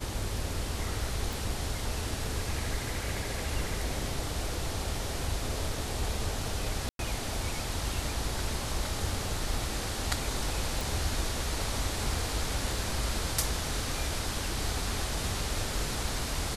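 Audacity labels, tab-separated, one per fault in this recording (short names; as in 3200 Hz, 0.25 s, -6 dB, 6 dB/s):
1.330000	1.330000	pop
6.890000	6.990000	gap 0.102 s
10.810000	10.810000	pop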